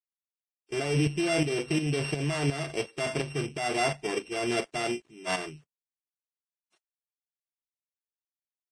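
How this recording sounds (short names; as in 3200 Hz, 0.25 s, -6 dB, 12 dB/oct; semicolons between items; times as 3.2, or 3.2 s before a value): a buzz of ramps at a fixed pitch in blocks of 16 samples; tremolo saw up 2.8 Hz, depth 65%; a quantiser's noise floor 12-bit, dither none; Vorbis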